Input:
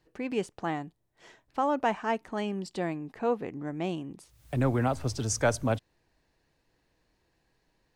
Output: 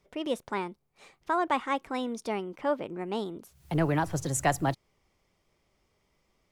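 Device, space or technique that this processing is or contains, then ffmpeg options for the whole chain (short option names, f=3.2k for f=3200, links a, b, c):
nightcore: -af "asetrate=53802,aresample=44100"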